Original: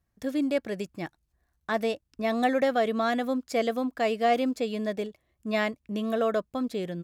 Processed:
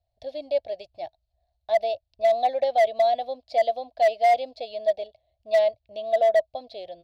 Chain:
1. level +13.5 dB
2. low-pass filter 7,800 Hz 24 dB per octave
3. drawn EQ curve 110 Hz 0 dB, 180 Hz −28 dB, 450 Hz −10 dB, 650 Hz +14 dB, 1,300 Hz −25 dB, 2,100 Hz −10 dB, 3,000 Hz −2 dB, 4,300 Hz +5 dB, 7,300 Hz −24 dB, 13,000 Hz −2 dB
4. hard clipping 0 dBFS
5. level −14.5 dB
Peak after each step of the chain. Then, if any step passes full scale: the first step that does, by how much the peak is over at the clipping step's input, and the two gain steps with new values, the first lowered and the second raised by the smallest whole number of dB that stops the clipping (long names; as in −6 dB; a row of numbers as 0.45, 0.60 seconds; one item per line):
+1.0, +1.0, +6.5, 0.0, −14.5 dBFS
step 1, 6.5 dB
step 1 +6.5 dB, step 5 −7.5 dB